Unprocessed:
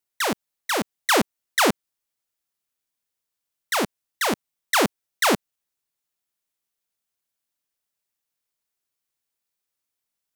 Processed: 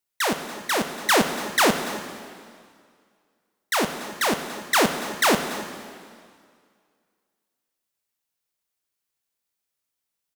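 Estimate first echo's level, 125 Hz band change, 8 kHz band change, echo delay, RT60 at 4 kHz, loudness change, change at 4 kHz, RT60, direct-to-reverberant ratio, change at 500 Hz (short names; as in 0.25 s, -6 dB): -17.5 dB, +1.0 dB, +1.0 dB, 0.286 s, 1.9 s, +0.5 dB, +1.0 dB, 2.0 s, 6.0 dB, +1.0 dB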